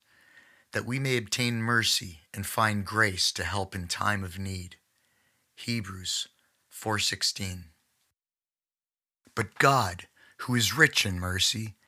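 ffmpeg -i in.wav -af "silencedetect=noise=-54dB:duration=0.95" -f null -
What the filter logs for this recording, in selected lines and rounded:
silence_start: 7.71
silence_end: 9.25 | silence_duration: 1.54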